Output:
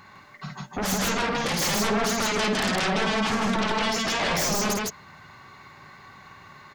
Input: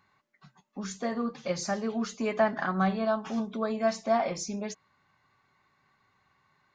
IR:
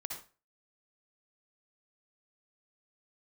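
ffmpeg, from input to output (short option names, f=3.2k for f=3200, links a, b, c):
-af "acompressor=threshold=-31dB:ratio=12,aeval=exprs='0.0708*sin(PI/2*6.31*val(0)/0.0708)':c=same,aecho=1:1:52.48|157.4:0.562|0.891,volume=-1.5dB"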